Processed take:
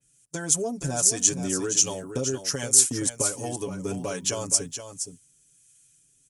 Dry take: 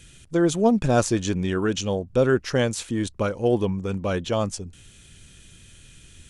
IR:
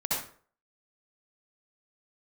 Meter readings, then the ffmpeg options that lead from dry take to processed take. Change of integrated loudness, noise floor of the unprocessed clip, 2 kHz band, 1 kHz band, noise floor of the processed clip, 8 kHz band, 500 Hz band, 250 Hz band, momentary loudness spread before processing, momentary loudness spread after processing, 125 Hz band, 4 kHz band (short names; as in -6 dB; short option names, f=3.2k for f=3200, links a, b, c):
0.0 dB, -51 dBFS, -7.0 dB, -8.5 dB, -63 dBFS, +15.0 dB, -9.0 dB, -9.0 dB, 8 LU, 16 LU, -8.0 dB, +3.0 dB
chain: -filter_complex "[0:a]agate=range=-23dB:threshold=-36dB:ratio=16:detection=peak,highpass=47,equalizer=f=81:w=3.4:g=-13.5,aecho=1:1:7.1:1,acompressor=threshold=-25dB:ratio=10,acrossover=split=780[a][b];[a]aeval=exprs='val(0)*(1-0.5/2+0.5/2*cos(2*PI*1.3*n/s))':c=same[c];[b]aeval=exprs='val(0)*(1-0.5/2-0.5/2*cos(2*PI*1.3*n/s))':c=same[d];[c][d]amix=inputs=2:normalize=0,aexciter=amount=8.6:drive=1.7:freq=5.3k,asplit=2[e][f];[f]aecho=0:1:470:0.335[g];[e][g]amix=inputs=2:normalize=0,adynamicequalizer=threshold=0.0126:dfrequency=3600:dqfactor=0.7:tfrequency=3600:tqfactor=0.7:attack=5:release=100:ratio=0.375:range=2:mode=boostabove:tftype=highshelf"